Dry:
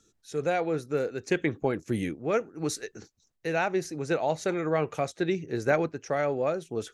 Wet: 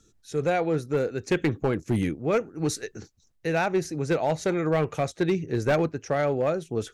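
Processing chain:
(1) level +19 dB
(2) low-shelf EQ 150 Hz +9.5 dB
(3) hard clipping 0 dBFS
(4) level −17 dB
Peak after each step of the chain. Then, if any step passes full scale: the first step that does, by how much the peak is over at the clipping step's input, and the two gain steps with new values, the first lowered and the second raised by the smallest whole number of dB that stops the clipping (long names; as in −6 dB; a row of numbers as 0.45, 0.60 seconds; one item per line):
+8.0, +8.0, 0.0, −17.0 dBFS
step 1, 8.0 dB
step 1 +11 dB, step 4 −9 dB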